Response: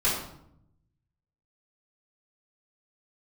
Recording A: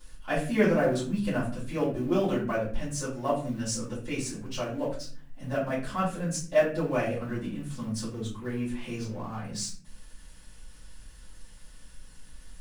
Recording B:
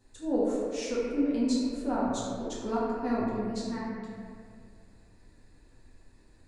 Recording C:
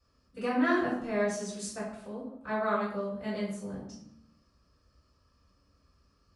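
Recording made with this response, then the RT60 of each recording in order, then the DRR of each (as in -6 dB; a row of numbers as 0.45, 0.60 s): C; 0.45, 2.2, 0.75 s; -11.0, -8.0, -11.0 dB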